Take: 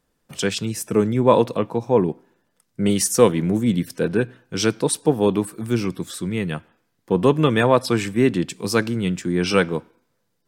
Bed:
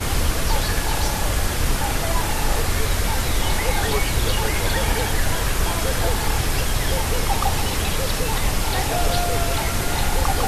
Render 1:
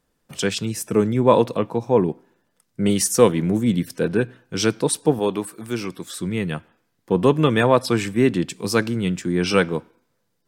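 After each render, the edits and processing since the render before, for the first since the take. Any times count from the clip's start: 5.19–6.17 s: bass shelf 270 Hz -10.5 dB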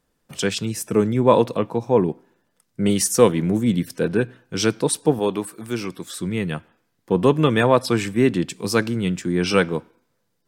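no audible change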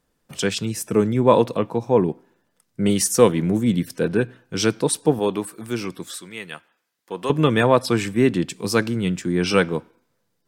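6.17–7.30 s: high-pass 1.4 kHz 6 dB/octave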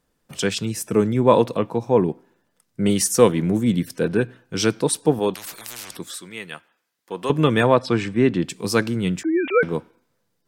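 5.34–5.97 s: spectrum-flattening compressor 10:1; 7.74–8.44 s: distance through air 100 m; 9.23–9.63 s: formants replaced by sine waves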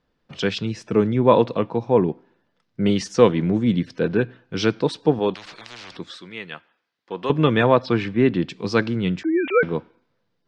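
low-pass 4.7 kHz 24 dB/octave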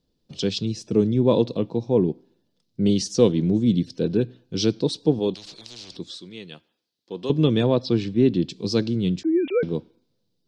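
FFT filter 360 Hz 0 dB, 1.3 kHz -16 dB, 2 kHz -15 dB, 4.1 kHz +4 dB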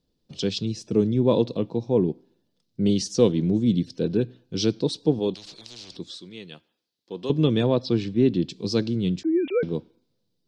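trim -1.5 dB

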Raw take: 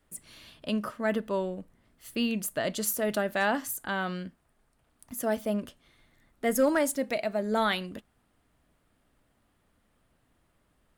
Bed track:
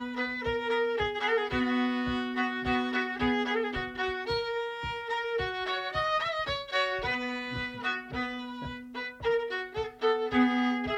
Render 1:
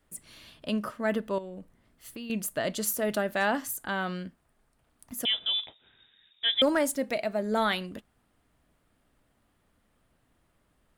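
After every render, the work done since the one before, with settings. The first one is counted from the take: 1.38–2.30 s: compression, threshold -37 dBFS; 5.25–6.62 s: frequency inversion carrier 3.7 kHz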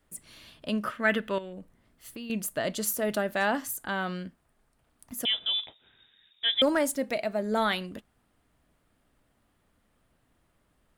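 0.85–1.53 s: high-order bell 2.2 kHz +9.5 dB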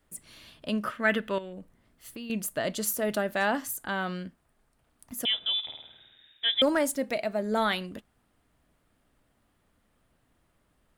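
5.59–6.48 s: flutter echo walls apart 8.9 m, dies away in 0.94 s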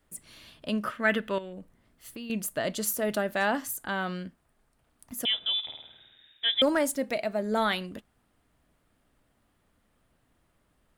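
no audible change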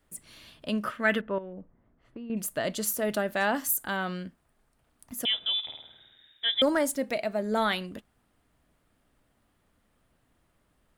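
1.21–2.37 s: low-pass 1.2 kHz; 3.56–3.97 s: treble shelf 8.4 kHz +11 dB; 5.79–6.88 s: peaking EQ 2.6 kHz -7.5 dB 0.22 oct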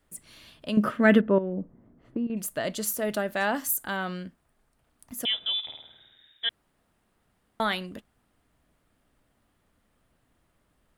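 0.77–2.27 s: peaking EQ 240 Hz +12.5 dB 2.9 oct; 6.49–7.60 s: room tone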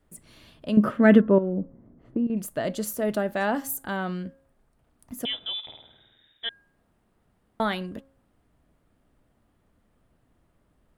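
tilt shelf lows +4.5 dB, about 1.1 kHz; de-hum 271.2 Hz, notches 6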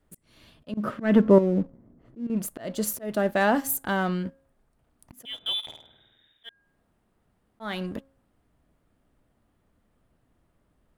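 waveshaping leveller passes 1; slow attack 281 ms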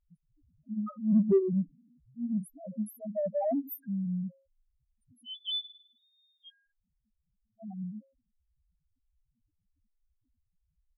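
loudest bins only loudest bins 1; in parallel at -11.5 dB: saturation -26 dBFS, distortion -11 dB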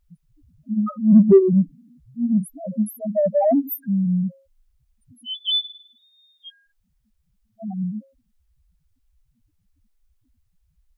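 trim +12 dB

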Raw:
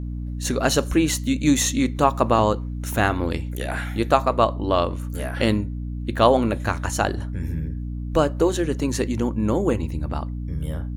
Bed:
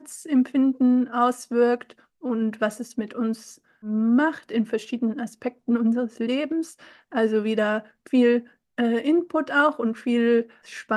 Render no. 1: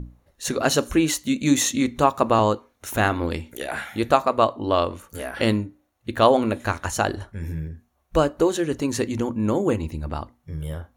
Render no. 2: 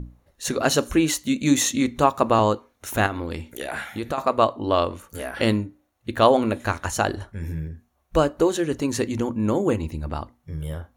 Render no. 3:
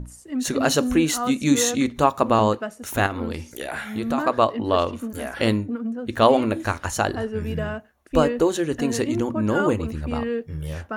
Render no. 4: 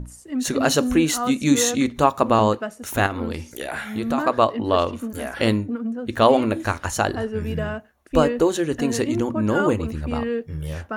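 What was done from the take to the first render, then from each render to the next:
hum notches 60/120/180/240/300 Hz
3.06–4.18 s: compression 3:1, threshold -25 dBFS
add bed -7 dB
trim +1 dB; peak limiter -2 dBFS, peak gain reduction 1 dB

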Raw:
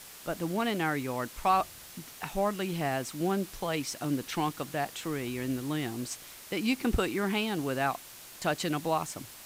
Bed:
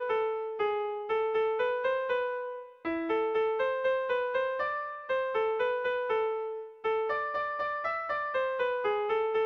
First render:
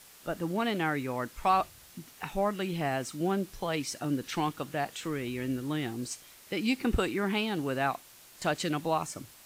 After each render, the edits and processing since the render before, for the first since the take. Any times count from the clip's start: noise print and reduce 6 dB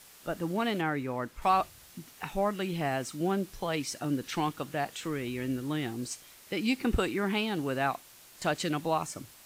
0.81–1.42 s: treble shelf 2.8 kHz -7.5 dB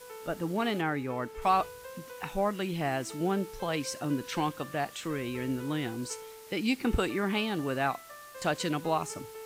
add bed -16.5 dB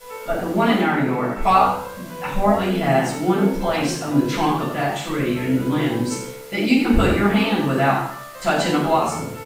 frequency-shifting echo 88 ms, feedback 31%, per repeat +70 Hz, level -9 dB; simulated room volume 420 m³, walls furnished, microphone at 6.8 m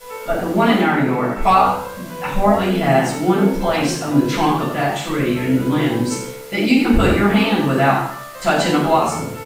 trim +3 dB; peak limiter -3 dBFS, peak gain reduction 2.5 dB

